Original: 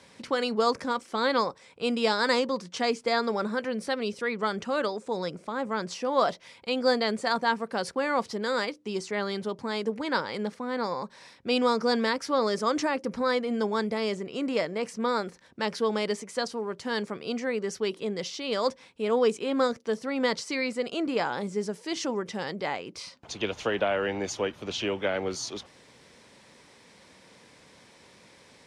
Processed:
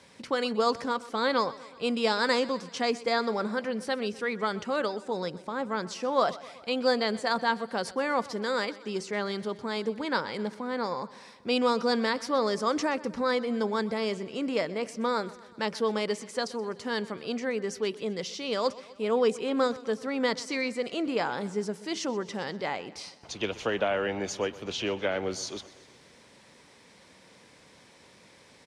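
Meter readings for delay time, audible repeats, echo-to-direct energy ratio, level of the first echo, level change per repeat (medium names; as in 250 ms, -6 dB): 126 ms, 4, -17.0 dB, -19.0 dB, -4.5 dB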